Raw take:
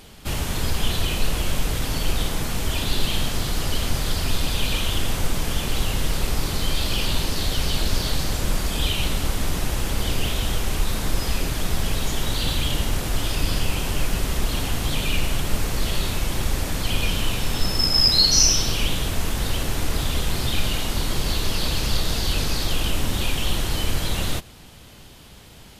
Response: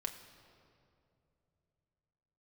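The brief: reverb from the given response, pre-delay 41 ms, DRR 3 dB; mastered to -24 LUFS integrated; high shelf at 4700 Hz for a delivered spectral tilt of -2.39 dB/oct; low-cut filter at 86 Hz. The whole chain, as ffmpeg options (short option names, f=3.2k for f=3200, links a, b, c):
-filter_complex "[0:a]highpass=86,highshelf=f=4.7k:g=7,asplit=2[a][b];[1:a]atrim=start_sample=2205,adelay=41[c];[b][c]afir=irnorm=-1:irlink=0,volume=-2.5dB[d];[a][d]amix=inputs=2:normalize=0,volume=-4dB"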